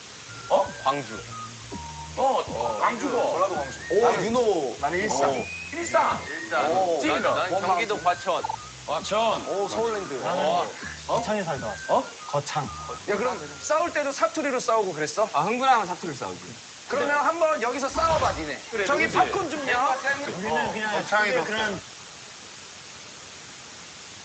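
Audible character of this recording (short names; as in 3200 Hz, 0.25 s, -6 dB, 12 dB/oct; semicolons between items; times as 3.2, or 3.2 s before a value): a quantiser's noise floor 6-bit, dither triangular; Speex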